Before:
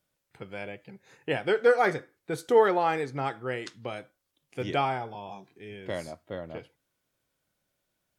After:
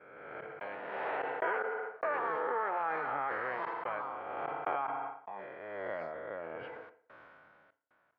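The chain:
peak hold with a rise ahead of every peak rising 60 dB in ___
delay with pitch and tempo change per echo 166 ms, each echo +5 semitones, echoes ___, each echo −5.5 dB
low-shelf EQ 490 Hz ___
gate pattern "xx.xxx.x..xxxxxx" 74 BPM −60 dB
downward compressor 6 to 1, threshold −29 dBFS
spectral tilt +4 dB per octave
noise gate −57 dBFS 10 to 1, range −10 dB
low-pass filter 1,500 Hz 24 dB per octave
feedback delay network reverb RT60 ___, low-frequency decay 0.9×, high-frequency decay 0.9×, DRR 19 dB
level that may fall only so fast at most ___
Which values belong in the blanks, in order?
1.74 s, 2, −8.5 dB, 0.51 s, 21 dB per second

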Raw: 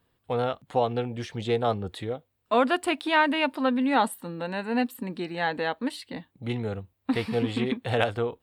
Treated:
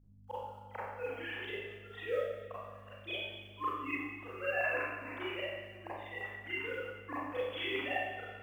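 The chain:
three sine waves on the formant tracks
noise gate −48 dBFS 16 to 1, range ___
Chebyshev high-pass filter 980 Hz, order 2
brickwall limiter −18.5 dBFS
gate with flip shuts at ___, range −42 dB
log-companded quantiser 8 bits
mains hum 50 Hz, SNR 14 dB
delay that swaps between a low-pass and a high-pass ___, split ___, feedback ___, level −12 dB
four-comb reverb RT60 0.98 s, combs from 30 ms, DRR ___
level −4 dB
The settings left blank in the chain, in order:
−8 dB, −28 dBFS, 109 ms, 1,900 Hz, 71%, −9.5 dB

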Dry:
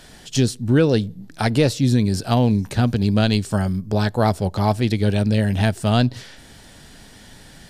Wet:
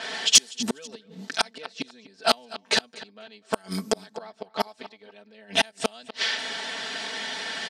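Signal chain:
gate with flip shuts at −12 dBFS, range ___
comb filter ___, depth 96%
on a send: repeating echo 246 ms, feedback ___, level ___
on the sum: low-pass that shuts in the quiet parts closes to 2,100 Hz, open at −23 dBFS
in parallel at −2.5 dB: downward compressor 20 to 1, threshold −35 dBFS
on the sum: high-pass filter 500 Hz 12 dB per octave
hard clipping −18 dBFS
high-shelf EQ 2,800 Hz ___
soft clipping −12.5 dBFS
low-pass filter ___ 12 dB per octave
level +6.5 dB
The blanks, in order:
−37 dB, 4.5 ms, 21%, −20 dB, +11 dB, 9,700 Hz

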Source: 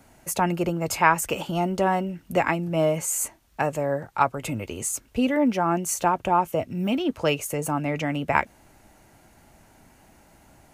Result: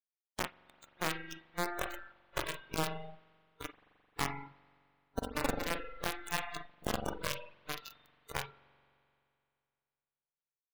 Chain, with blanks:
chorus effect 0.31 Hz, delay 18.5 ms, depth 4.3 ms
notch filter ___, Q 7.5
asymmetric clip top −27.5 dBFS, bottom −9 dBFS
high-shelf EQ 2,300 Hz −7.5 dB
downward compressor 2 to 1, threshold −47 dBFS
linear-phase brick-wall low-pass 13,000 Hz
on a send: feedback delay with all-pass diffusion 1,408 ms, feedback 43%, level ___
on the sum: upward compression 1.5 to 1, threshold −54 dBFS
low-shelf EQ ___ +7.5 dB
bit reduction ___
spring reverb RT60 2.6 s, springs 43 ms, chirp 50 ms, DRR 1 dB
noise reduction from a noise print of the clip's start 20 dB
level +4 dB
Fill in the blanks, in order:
1,700 Hz, −9.5 dB, 180 Hz, 5 bits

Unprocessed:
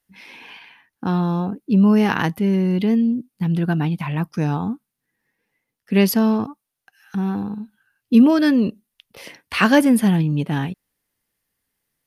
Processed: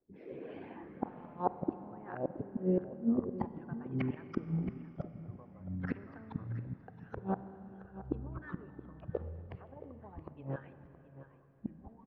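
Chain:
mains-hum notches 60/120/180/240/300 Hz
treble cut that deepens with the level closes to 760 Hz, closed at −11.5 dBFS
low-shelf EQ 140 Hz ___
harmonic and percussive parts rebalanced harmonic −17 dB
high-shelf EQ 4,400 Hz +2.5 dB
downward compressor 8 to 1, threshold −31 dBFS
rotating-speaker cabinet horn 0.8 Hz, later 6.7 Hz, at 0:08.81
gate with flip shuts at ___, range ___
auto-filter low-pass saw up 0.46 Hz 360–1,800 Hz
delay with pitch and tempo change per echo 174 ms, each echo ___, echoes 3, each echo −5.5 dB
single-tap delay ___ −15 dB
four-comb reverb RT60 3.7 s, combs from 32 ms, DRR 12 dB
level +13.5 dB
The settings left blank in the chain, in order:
−10.5 dB, −34 dBFS, −30 dB, −6 semitones, 672 ms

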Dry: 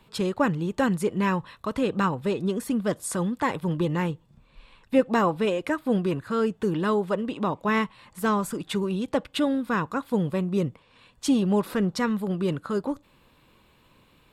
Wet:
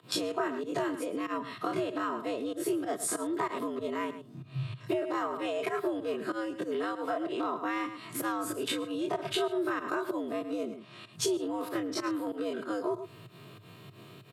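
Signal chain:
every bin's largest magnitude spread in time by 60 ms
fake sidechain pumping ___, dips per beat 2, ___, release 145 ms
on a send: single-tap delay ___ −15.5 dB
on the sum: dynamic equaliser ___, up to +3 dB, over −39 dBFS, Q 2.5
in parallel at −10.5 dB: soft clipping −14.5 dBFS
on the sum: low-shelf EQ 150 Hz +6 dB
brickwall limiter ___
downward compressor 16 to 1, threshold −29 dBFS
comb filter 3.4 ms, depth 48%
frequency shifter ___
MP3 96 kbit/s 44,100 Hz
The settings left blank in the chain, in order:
95 BPM, −21 dB, 108 ms, 1,000 Hz, −12 dBFS, +100 Hz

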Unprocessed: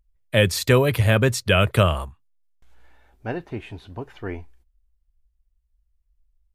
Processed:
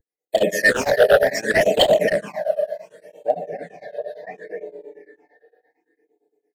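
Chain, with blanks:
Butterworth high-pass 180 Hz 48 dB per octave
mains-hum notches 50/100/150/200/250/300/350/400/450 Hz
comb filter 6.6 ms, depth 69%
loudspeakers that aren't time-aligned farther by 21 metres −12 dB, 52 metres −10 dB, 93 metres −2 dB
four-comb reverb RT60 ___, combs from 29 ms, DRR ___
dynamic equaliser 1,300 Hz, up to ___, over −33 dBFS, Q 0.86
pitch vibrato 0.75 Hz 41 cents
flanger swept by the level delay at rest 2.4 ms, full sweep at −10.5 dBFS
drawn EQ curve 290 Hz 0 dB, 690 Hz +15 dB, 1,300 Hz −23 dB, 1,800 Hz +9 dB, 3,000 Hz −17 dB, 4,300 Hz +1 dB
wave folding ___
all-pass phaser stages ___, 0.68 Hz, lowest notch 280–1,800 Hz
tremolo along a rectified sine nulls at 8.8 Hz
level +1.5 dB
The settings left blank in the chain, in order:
3.1 s, 5.5 dB, +6 dB, −5.5 dBFS, 8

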